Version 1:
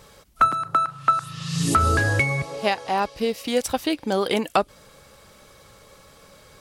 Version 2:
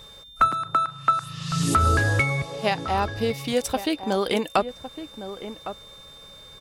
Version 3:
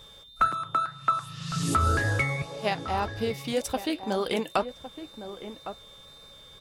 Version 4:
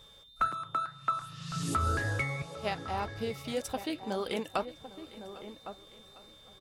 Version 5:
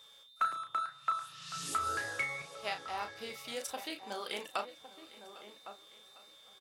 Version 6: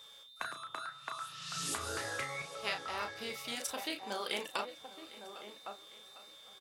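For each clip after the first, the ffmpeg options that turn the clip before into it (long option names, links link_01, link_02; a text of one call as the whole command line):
ffmpeg -i in.wav -filter_complex "[0:a]lowshelf=frequency=68:gain=6,asplit=2[link_01][link_02];[link_02]adelay=1108,volume=-11dB,highshelf=frequency=4000:gain=-24.9[link_03];[link_01][link_03]amix=inputs=2:normalize=0,aeval=exprs='val(0)+0.00708*sin(2*PI*3600*n/s)':channel_layout=same,volume=-1.5dB" out.wav
ffmpeg -i in.wav -af "flanger=delay=1.8:depth=9.2:regen=-71:speed=1.9:shape=triangular" out.wav
ffmpeg -i in.wav -af "aecho=1:1:803|1606|2409|3212:0.1|0.05|0.025|0.0125,volume=-6dB" out.wav
ffmpeg -i in.wav -filter_complex "[0:a]highpass=frequency=1200:poles=1,asplit=2[link_01][link_02];[link_02]adelay=34,volume=-7.5dB[link_03];[link_01][link_03]amix=inputs=2:normalize=0" out.wav
ffmpeg -i in.wav -af "afftfilt=real='re*lt(hypot(re,im),0.0891)':imag='im*lt(hypot(re,im),0.0891)':win_size=1024:overlap=0.75,volume=3dB" out.wav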